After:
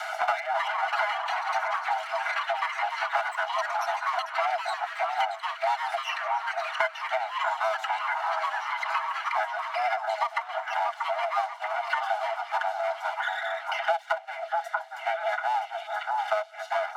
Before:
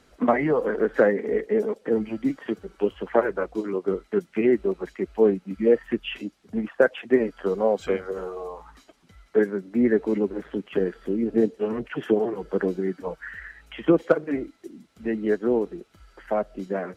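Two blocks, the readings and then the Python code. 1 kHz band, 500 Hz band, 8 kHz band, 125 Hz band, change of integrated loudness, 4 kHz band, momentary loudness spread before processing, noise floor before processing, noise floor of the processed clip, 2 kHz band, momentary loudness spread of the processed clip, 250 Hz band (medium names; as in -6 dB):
+10.0 dB, -10.0 dB, no reading, under -40 dB, -4.0 dB, +8.0 dB, 12 LU, -60 dBFS, -42 dBFS, +5.5 dB, 3 LU, under -40 dB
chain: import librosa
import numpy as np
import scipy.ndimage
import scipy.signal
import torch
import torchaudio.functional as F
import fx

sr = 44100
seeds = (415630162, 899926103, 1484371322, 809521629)

p1 = fx.lower_of_two(x, sr, delay_ms=4.8)
p2 = scipy.signal.sosfilt(scipy.signal.cheby1(10, 1.0, 650.0, 'highpass', fs=sr, output='sos'), p1)
p3 = fx.high_shelf(p2, sr, hz=3300.0, db=-10.5)
p4 = p3 + 0.8 * np.pad(p3, (int(1.4 * sr / 1000.0), 0))[:len(p3)]
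p5 = fx.echo_tape(p4, sr, ms=665, feedback_pct=55, wet_db=-20.0, lp_hz=2400.0, drive_db=9.0, wow_cents=22)
p6 = fx.echo_pitch(p5, sr, ms=393, semitones=6, count=3, db_per_echo=-6.0)
p7 = p6 + fx.echo_stepped(p6, sr, ms=635, hz=1100.0, octaves=0.7, feedback_pct=70, wet_db=-7.0, dry=0)
p8 = fx.band_squash(p7, sr, depth_pct=100)
y = F.gain(torch.from_numpy(p8), 2.5).numpy()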